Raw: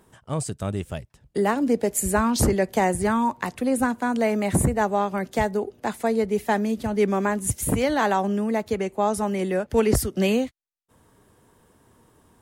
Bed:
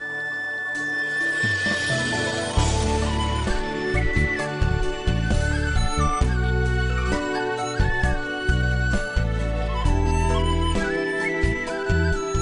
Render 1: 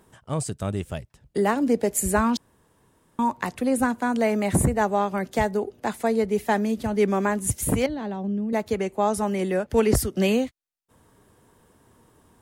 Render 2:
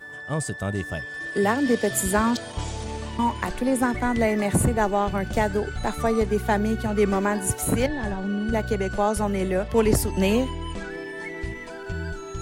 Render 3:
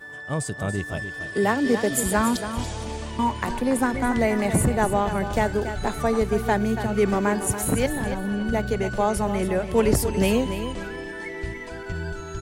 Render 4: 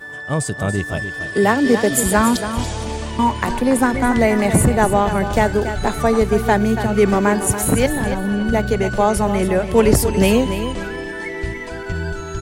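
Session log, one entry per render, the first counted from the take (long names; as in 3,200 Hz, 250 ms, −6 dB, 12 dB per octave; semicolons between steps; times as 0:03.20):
0:02.37–0:03.19: fill with room tone; 0:07.86–0:08.53: drawn EQ curve 180 Hz 0 dB, 1,300 Hz −19 dB, 4,200 Hz −13 dB, 6,800 Hz −25 dB
mix in bed −10 dB
repeating echo 283 ms, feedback 23%, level −10 dB
level +6.5 dB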